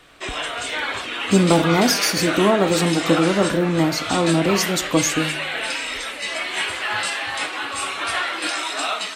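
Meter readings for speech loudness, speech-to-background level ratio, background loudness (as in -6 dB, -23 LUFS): -19.5 LUFS, 4.5 dB, -24.0 LUFS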